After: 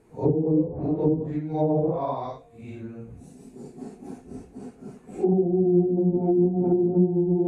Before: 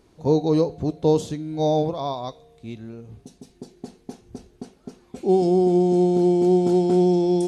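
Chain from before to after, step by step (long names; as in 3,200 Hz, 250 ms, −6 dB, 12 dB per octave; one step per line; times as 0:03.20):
random phases in long frames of 200 ms
flat-topped bell 4,300 Hz −11 dB 1.2 octaves
treble cut that deepens with the level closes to 310 Hz, closed at −15.5 dBFS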